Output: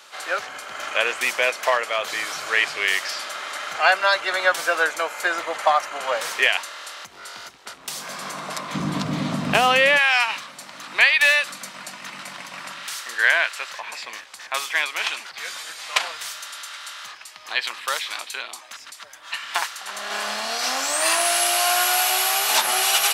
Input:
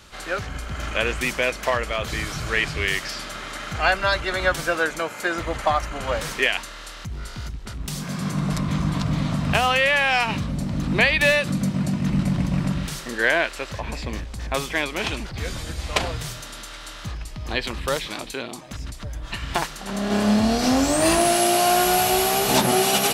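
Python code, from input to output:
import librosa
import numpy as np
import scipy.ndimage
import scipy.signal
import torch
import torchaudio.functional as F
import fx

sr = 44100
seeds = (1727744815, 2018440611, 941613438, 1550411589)

y = fx.cheby1_highpass(x, sr, hz=fx.steps((0.0, 690.0), (8.74, 260.0), (9.97, 1200.0)), order=2)
y = y * librosa.db_to_amplitude(3.5)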